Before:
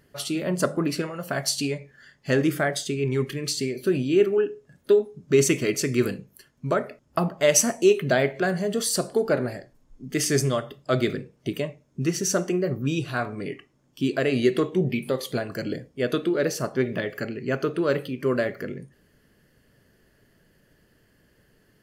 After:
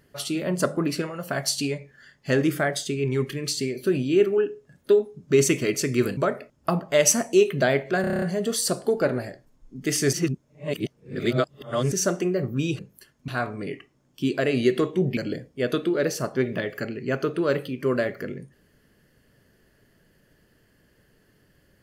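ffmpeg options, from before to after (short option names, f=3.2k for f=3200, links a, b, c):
-filter_complex "[0:a]asplit=14[a][b][c][d][e][f][g][h][i][j][k][l][m][n];[a]atrim=end=6.172[o];[b]atrim=start=6.658:end=8.532[p];[c]atrim=start=8.498:end=8.532[q];[d]atrim=start=8.498:end=8.532[r];[e]atrim=start=8.498:end=8.532[s];[f]atrim=start=8.498:end=8.532[t];[g]atrim=start=8.498:end=8.532[u];[h]atrim=start=8.498:end=8.532[v];[i]atrim=start=8.498:end=10.412[w];[j]atrim=start=10.408:end=12.202,asetpts=PTS-STARTPTS,areverse[x];[k]atrim=start=12.198:end=13.072[y];[l]atrim=start=6.168:end=6.662[z];[m]atrim=start=13.068:end=14.962[aa];[n]atrim=start=15.568[ab];[o][p]acrossfade=d=0.004:c1=hsin:c2=hsin[ac];[ac][q]acrossfade=d=0.004:c1=hsin:c2=hsin[ad];[ad][r]acrossfade=d=0.004:c1=hsin:c2=hsin[ae];[ae][s]acrossfade=d=0.004:c1=hsin:c2=hsin[af];[af][t]acrossfade=d=0.004:c1=hsin:c2=hsin[ag];[ag][u]acrossfade=d=0.004:c1=hsin:c2=hsin[ah];[ah][v]acrossfade=d=0.004:c1=hsin:c2=hsin[ai];[ai][w]acrossfade=d=0.004:c1=hsin:c2=hsin[aj];[aj][x]acrossfade=d=0.004:c1=hsin:c2=hsin[ak];[ak][y]acrossfade=d=0.004:c1=hsin:c2=hsin[al];[al][z]acrossfade=d=0.004:c1=hsin:c2=hsin[am];[am][aa]acrossfade=d=0.004:c1=hsin:c2=hsin[an];[an][ab]acrossfade=d=0.004:c1=hsin:c2=hsin"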